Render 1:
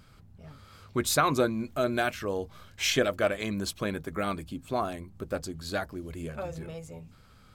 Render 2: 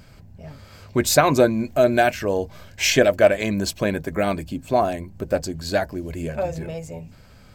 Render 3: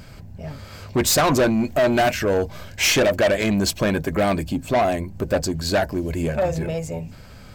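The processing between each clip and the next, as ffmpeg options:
ffmpeg -i in.wav -af "superequalizer=8b=1.58:10b=0.447:13b=0.631:16b=0.562,volume=8.5dB" out.wav
ffmpeg -i in.wav -af "asoftclip=type=tanh:threshold=-20dB,volume=6dB" out.wav

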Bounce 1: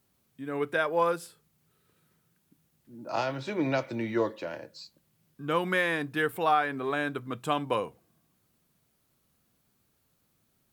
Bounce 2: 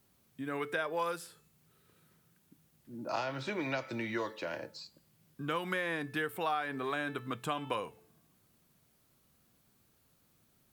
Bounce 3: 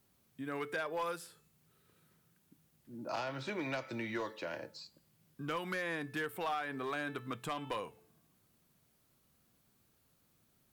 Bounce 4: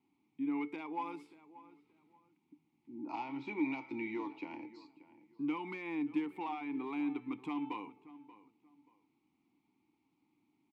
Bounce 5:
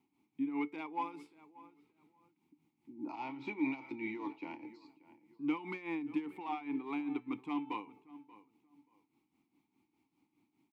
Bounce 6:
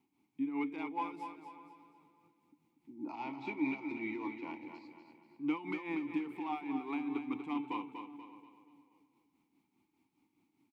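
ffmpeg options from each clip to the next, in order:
ffmpeg -i in.wav -filter_complex "[0:a]bandreject=frequency=437.1:width_type=h:width=4,bandreject=frequency=874.2:width_type=h:width=4,bandreject=frequency=1311.3:width_type=h:width=4,bandreject=frequency=1748.4:width_type=h:width=4,bandreject=frequency=2185.5:width_type=h:width=4,bandreject=frequency=2622.6:width_type=h:width=4,bandreject=frequency=3059.7:width_type=h:width=4,bandreject=frequency=3496.8:width_type=h:width=4,bandreject=frequency=3933.9:width_type=h:width=4,bandreject=frequency=4371:width_type=h:width=4,bandreject=frequency=4808.1:width_type=h:width=4,bandreject=frequency=5245.2:width_type=h:width=4,bandreject=frequency=5682.3:width_type=h:width=4,bandreject=frequency=6119.4:width_type=h:width=4,bandreject=frequency=6556.5:width_type=h:width=4,bandreject=frequency=6993.6:width_type=h:width=4,bandreject=frequency=7430.7:width_type=h:width=4,bandreject=frequency=7867.8:width_type=h:width=4,bandreject=frequency=8304.9:width_type=h:width=4,bandreject=frequency=8742:width_type=h:width=4,bandreject=frequency=9179.1:width_type=h:width=4,bandreject=frequency=9616.2:width_type=h:width=4,bandreject=frequency=10053.3:width_type=h:width=4,bandreject=frequency=10490.4:width_type=h:width=4,bandreject=frequency=10927.5:width_type=h:width=4,bandreject=frequency=11364.6:width_type=h:width=4,bandreject=frequency=11801.7:width_type=h:width=4,bandreject=frequency=12238.8:width_type=h:width=4,bandreject=frequency=12675.9:width_type=h:width=4,bandreject=frequency=13113:width_type=h:width=4,bandreject=frequency=13550.1:width_type=h:width=4,bandreject=frequency=13987.2:width_type=h:width=4,acrossover=split=1000|2700[link_01][link_02][link_03];[link_01]acompressor=threshold=-39dB:ratio=4[link_04];[link_02]acompressor=threshold=-40dB:ratio=4[link_05];[link_03]acompressor=threshold=-49dB:ratio=4[link_06];[link_04][link_05][link_06]amix=inputs=3:normalize=0,volume=2dB" out.wav
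ffmpeg -i in.wav -af "volume=28dB,asoftclip=hard,volume=-28dB,volume=-2.5dB" out.wav
ffmpeg -i in.wav -filter_complex "[0:a]asplit=3[link_01][link_02][link_03];[link_01]bandpass=frequency=300:width_type=q:width=8,volume=0dB[link_04];[link_02]bandpass=frequency=870:width_type=q:width=8,volume=-6dB[link_05];[link_03]bandpass=frequency=2240:width_type=q:width=8,volume=-9dB[link_06];[link_04][link_05][link_06]amix=inputs=3:normalize=0,asplit=2[link_07][link_08];[link_08]adelay=582,lowpass=frequency=2400:poles=1,volume=-17dB,asplit=2[link_09][link_10];[link_10]adelay=582,lowpass=frequency=2400:poles=1,volume=0.26[link_11];[link_07][link_09][link_11]amix=inputs=3:normalize=0,volume=11dB" out.wav
ffmpeg -i in.wav -af "tremolo=f=4.9:d=0.69,volume=3dB" out.wav
ffmpeg -i in.wav -af "aecho=1:1:241|482|723|964|1205:0.422|0.173|0.0709|0.0291|0.0119" out.wav

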